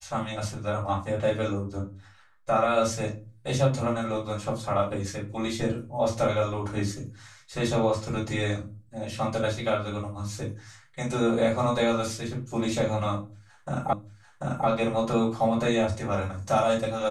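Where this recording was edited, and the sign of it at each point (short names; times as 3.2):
13.93 repeat of the last 0.74 s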